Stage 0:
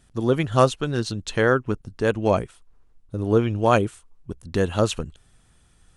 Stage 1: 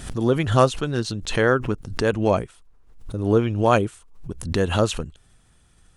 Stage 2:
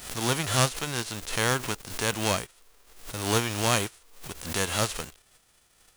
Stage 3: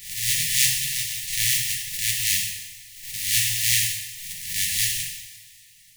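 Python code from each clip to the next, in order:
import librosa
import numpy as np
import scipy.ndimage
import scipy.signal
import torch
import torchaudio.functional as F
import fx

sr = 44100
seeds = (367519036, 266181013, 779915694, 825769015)

y1 = fx.pre_swell(x, sr, db_per_s=84.0)
y2 = fx.envelope_flatten(y1, sr, power=0.3)
y2 = y2 * 10.0 ** (-7.0 / 20.0)
y3 = fx.spec_flatten(y2, sr, power=0.32)
y3 = fx.brickwall_bandstop(y3, sr, low_hz=180.0, high_hz=1700.0)
y3 = fx.rev_double_slope(y3, sr, seeds[0], early_s=0.97, late_s=3.1, knee_db=-18, drr_db=-2.0)
y3 = y3 * 10.0 ** (1.0 / 20.0)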